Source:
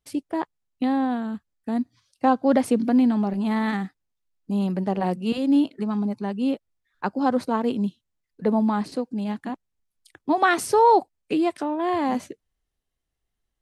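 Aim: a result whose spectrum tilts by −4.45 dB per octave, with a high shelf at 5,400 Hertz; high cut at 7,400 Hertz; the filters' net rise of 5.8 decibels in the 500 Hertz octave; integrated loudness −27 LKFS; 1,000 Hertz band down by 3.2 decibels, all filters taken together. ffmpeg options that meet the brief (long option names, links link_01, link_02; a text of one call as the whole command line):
ffmpeg -i in.wav -af "lowpass=7400,equalizer=frequency=500:width_type=o:gain=8.5,equalizer=frequency=1000:width_type=o:gain=-7.5,highshelf=frequency=5400:gain=-7.5,volume=-5dB" out.wav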